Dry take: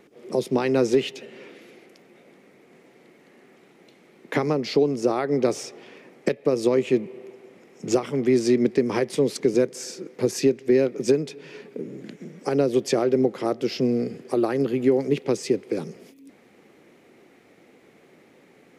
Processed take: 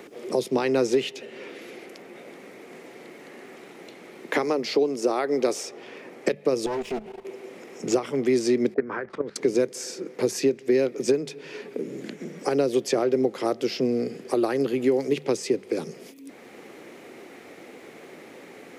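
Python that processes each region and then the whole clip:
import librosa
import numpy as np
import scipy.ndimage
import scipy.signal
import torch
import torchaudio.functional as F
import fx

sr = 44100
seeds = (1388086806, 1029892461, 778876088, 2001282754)

y = fx.chain(x, sr, fx.highpass(hz=220.0, slope=12),
    fx.high_shelf(hz=8000.0, db=4.0), at=(4.34, 5.69))
y = fx.chain(y, sr, fx.lower_of_two(delay_ms=4.7),
    fx.level_steps(step_db=14), at=(6.66, 7.25))
y = fx.chain(y, sr, fx.level_steps(step_db=17),
    fx.envelope_lowpass(base_hz=600.0, top_hz=1500.0, q=6.1, full_db=-30.0, direction='up'), at=(8.74, 9.36))
y = fx.bass_treble(y, sr, bass_db=-6, treble_db=2)
y = fx.hum_notches(y, sr, base_hz=50, count=4)
y = fx.band_squash(y, sr, depth_pct=40)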